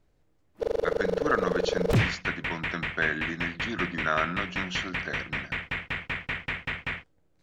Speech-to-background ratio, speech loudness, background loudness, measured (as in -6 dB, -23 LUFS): -1.5 dB, -32.0 LUFS, -30.5 LUFS